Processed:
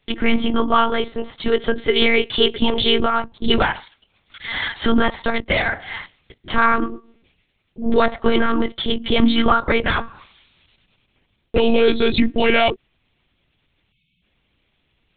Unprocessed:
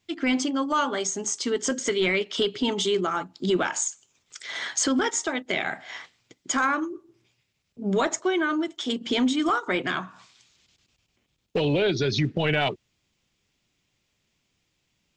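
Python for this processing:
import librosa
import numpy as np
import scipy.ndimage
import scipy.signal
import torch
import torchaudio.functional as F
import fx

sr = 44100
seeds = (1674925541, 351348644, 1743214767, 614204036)

y = fx.spec_erase(x, sr, start_s=13.91, length_s=0.32, low_hz=260.0, high_hz=2100.0)
y = fx.lpc_monotone(y, sr, seeds[0], pitch_hz=230.0, order=10)
y = y * 10.0 ** (8.5 / 20.0)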